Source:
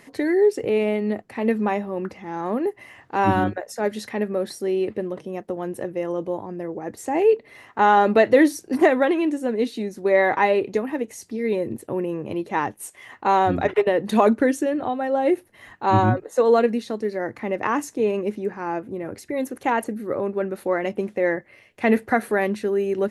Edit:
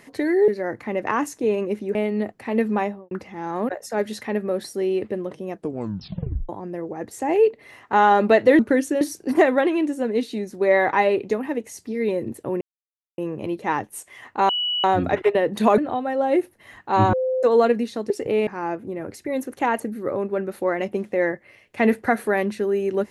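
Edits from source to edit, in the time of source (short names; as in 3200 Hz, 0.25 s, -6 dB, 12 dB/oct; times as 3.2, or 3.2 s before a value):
0.48–0.85 swap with 17.04–18.51
1.71–2.01 studio fade out
2.59–3.55 cut
5.37 tape stop 0.98 s
12.05 insert silence 0.57 s
13.36 add tone 2940 Hz -21 dBFS 0.35 s
14.3–14.72 move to 8.45
16.07–16.37 bleep 516 Hz -19.5 dBFS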